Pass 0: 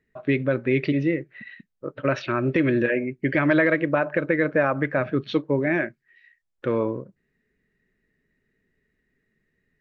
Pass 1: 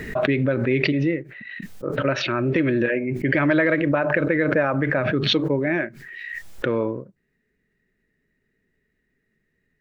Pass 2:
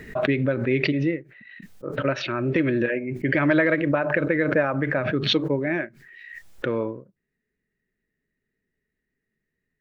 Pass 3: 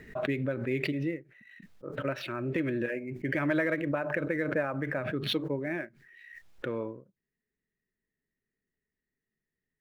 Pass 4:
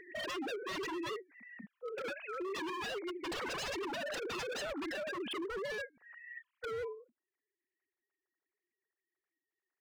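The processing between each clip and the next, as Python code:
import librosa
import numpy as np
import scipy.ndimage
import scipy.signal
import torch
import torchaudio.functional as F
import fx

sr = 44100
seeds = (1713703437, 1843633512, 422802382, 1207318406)

y1 = fx.notch(x, sr, hz=1100.0, q=26.0)
y1 = fx.pre_swell(y1, sr, db_per_s=31.0)
y2 = fx.upward_expand(y1, sr, threshold_db=-34.0, expansion=1.5)
y3 = scipy.ndimage.median_filter(y2, 5, mode='constant')
y3 = F.gain(torch.from_numpy(y3), -8.5).numpy()
y4 = fx.sine_speech(y3, sr)
y4 = 10.0 ** (-33.5 / 20.0) * (np.abs((y4 / 10.0 ** (-33.5 / 20.0) + 3.0) % 4.0 - 2.0) - 1.0)
y4 = F.gain(torch.from_numpy(y4), -1.0).numpy()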